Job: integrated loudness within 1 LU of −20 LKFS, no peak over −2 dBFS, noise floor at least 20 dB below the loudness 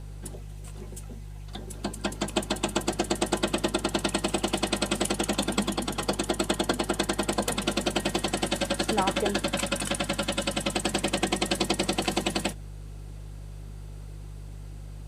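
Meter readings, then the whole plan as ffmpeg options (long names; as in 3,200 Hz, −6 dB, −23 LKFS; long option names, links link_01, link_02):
mains hum 50 Hz; hum harmonics up to 150 Hz; level of the hum −37 dBFS; integrated loudness −28.0 LKFS; sample peak −8.0 dBFS; target loudness −20.0 LKFS
→ -af "bandreject=frequency=50:width_type=h:width=4,bandreject=frequency=100:width_type=h:width=4,bandreject=frequency=150:width_type=h:width=4"
-af "volume=8dB,alimiter=limit=-2dB:level=0:latency=1"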